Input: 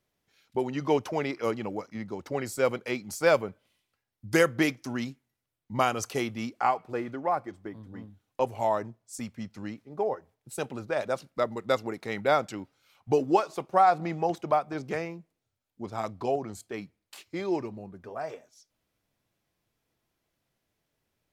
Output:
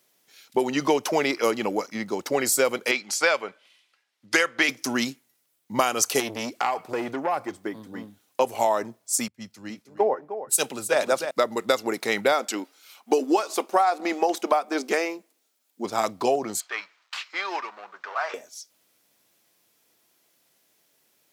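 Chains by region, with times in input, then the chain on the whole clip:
2.91–4.69 s: low-pass 2.5 kHz + tilt EQ +4.5 dB/octave
6.20–7.57 s: peaking EQ 100 Hz +9 dB 0.57 oct + compression 5:1, threshold -29 dBFS + transformer saturation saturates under 1.1 kHz
9.28–11.31 s: delay 310 ms -8 dB + three bands expanded up and down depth 100%
12.32–15.85 s: brick-wall FIR high-pass 200 Hz + band-stop 540 Hz, Q 18
16.60–18.34 s: companding laws mixed up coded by mu + resonant high-pass 1.2 kHz, resonance Q 1.9 + distance through air 190 m
whole clip: high-pass 250 Hz 12 dB/octave; treble shelf 4 kHz +11.5 dB; compression 10:1, threshold -26 dBFS; trim +9 dB

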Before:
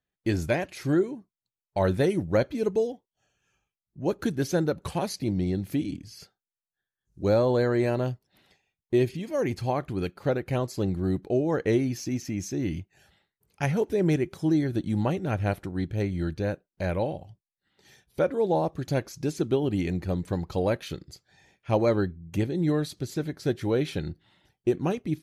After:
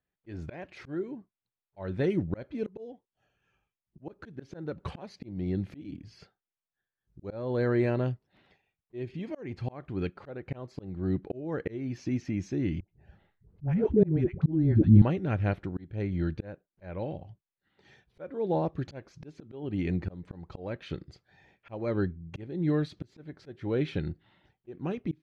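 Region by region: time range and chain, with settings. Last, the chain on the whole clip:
12.80–15.02 s: tilt EQ -4 dB/octave + phase dispersion highs, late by 84 ms, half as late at 540 Hz
whole clip: slow attack 383 ms; low-pass 2.8 kHz 12 dB/octave; dynamic bell 770 Hz, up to -5 dB, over -40 dBFS, Q 1

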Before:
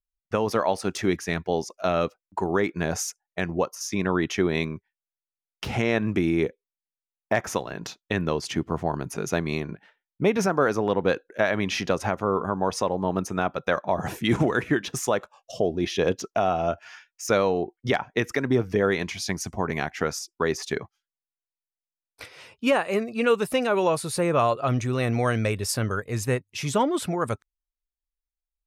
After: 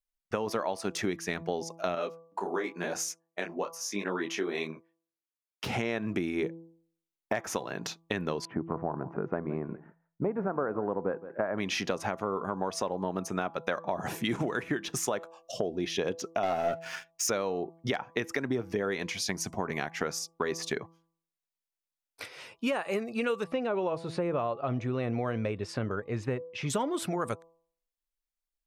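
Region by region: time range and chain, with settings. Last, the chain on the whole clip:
1.95–5.64 s: high-pass 260 Hz + detune thickener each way 34 cents
8.45–11.58 s: low-pass 1.4 kHz 24 dB/octave + delay 168 ms -20 dB
16.43–17.30 s: waveshaping leveller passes 2 + comb 7.5 ms, depth 33%
23.44–26.70 s: low-pass 2.6 kHz + dynamic bell 1.7 kHz, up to -6 dB, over -39 dBFS, Q 0.87
whole clip: peaking EQ 62 Hz -14 dB 1.2 oct; de-hum 165.5 Hz, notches 7; compression 4:1, threshold -28 dBFS

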